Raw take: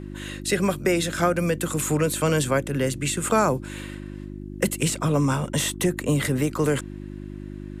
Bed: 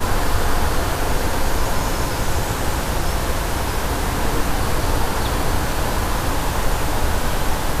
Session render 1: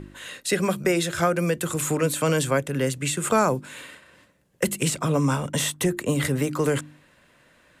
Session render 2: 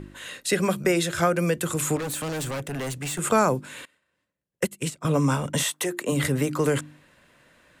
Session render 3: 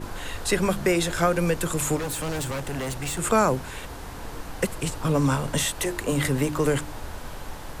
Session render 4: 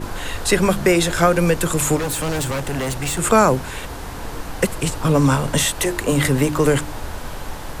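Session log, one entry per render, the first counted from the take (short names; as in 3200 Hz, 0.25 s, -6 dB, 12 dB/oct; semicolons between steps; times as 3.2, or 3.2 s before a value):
de-hum 50 Hz, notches 7
1.96–3.19 overloaded stage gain 28 dB; 3.85–5.05 upward expander 2.5:1, over -33 dBFS; 5.62–6.11 HPF 710 Hz -> 240 Hz
add bed -16.5 dB
gain +6.5 dB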